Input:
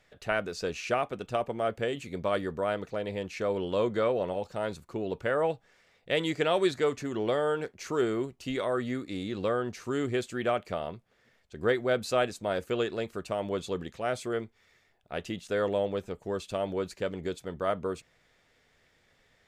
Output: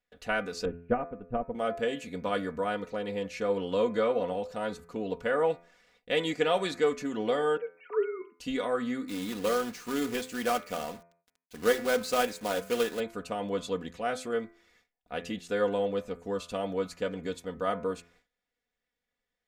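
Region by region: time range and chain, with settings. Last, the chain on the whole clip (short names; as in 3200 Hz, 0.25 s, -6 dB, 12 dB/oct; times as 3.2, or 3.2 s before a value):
0.65–1.55 LPF 2500 Hz 24 dB/oct + tilt -4.5 dB/oct + upward expander 2.5:1, over -42 dBFS
7.57–8.4 sine-wave speech + dynamic EQ 2400 Hz, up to +4 dB, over -55 dBFS, Q 2
9.08–13 bell 69 Hz -5.5 dB 1.8 oct + de-hum 63.76 Hz, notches 3 + companded quantiser 4-bit
whole clip: de-hum 85.38 Hz, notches 30; gate with hold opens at -53 dBFS; comb 4.1 ms, depth 69%; gain -1.5 dB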